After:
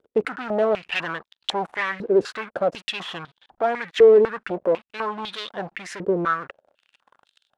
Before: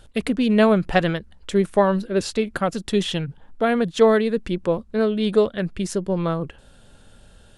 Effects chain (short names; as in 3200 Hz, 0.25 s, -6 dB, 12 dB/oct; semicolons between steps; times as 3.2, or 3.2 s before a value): dynamic EQ 580 Hz, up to -6 dB, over -33 dBFS, Q 2.6; sample leveller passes 5; stepped band-pass 4 Hz 440–3600 Hz; gain -2.5 dB